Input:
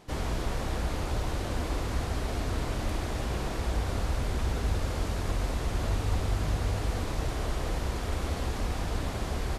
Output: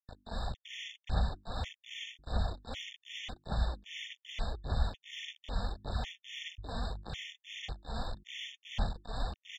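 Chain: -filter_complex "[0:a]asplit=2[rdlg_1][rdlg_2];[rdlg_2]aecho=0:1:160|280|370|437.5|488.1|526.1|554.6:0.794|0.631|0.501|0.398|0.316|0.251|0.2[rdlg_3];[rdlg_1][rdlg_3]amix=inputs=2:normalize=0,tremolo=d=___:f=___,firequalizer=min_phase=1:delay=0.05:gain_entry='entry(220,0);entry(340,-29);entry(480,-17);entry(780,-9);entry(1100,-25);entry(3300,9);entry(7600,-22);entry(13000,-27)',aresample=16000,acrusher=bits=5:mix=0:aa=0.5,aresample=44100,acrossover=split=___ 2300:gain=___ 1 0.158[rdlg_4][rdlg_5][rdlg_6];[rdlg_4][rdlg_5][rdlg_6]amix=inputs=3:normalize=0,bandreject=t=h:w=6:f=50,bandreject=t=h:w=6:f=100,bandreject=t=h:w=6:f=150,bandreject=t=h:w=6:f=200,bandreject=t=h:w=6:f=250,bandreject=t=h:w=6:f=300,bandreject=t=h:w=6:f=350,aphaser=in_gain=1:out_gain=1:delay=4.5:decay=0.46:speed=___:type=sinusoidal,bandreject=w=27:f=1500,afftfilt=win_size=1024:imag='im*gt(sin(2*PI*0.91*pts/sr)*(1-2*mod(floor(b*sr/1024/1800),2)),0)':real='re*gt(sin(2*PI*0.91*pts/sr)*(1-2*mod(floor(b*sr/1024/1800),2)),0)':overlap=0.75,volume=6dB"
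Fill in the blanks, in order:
0.96, 2.5, 480, 0.224, 1.7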